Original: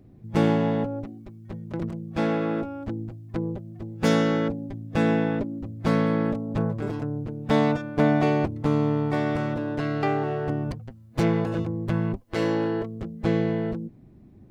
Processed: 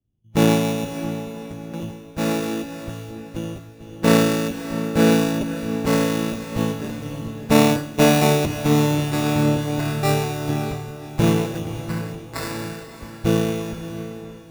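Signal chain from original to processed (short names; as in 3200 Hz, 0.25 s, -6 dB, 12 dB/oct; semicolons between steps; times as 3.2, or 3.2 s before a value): 11.79–12.91 tilt shelf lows -9 dB; sample-and-hold 14×; diffused feedback echo 0.576 s, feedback 60%, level -5.5 dB; three-band expander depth 100%; gain +2 dB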